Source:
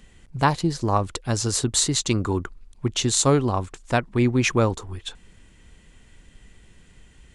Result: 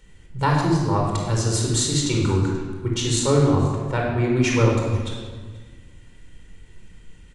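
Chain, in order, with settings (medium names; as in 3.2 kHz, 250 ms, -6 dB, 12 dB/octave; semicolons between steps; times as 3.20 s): 3.19–4.24 s: treble shelf 3.5 kHz -9 dB; delay 483 ms -23 dB; reverberation RT60 1.5 s, pre-delay 23 ms, DRR -1.5 dB; trim -5.5 dB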